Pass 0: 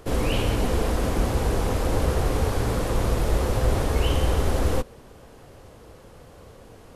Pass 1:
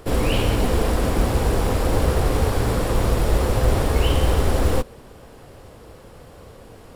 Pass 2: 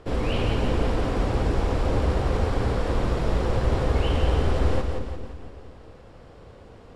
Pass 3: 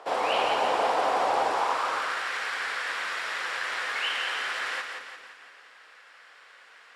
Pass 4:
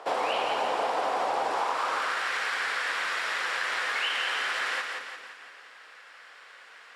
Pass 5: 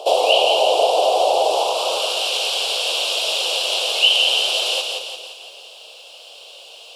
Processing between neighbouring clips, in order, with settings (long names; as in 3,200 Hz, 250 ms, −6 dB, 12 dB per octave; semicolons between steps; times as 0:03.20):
notch filter 6,300 Hz, Q 12; in parallel at −6 dB: floating-point word with a short mantissa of 2 bits
high-frequency loss of the air 96 metres; on a send: echo with a time of its own for lows and highs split 500 Hz, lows 229 ms, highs 172 ms, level −5.5 dB; on the sum: level −5 dB
high-pass filter sweep 780 Hz → 1,700 Hz, 0:01.45–0:02.29; level +3.5 dB
high-pass filter 92 Hz; downward compressor, threshold −27 dBFS, peak gain reduction 6.5 dB; level +2.5 dB
drawn EQ curve 130 Hz 0 dB, 180 Hz −30 dB, 350 Hz +4 dB, 630 Hz +13 dB, 1,900 Hz −27 dB, 2,800 Hz +14 dB, 6,700 Hz +10 dB, 11,000 Hz +15 dB; level +4.5 dB